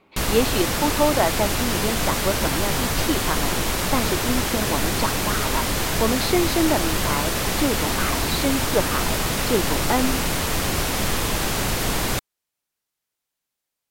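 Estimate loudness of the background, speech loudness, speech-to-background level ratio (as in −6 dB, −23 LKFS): −23.0 LKFS, −26.0 LKFS, −3.0 dB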